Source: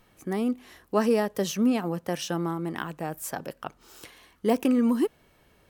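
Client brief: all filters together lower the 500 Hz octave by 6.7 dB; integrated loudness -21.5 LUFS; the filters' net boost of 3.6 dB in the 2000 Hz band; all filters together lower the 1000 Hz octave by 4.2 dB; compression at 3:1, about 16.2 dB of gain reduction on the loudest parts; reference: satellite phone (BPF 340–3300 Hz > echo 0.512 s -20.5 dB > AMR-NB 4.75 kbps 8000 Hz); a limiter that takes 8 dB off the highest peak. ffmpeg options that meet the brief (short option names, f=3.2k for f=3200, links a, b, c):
-af "equalizer=f=500:t=o:g=-6,equalizer=f=1k:t=o:g=-5,equalizer=f=2k:t=o:g=7,acompressor=threshold=-44dB:ratio=3,alimiter=level_in=9dB:limit=-24dB:level=0:latency=1,volume=-9dB,highpass=340,lowpass=3.3k,aecho=1:1:512:0.0944,volume=29dB" -ar 8000 -c:a libopencore_amrnb -b:a 4750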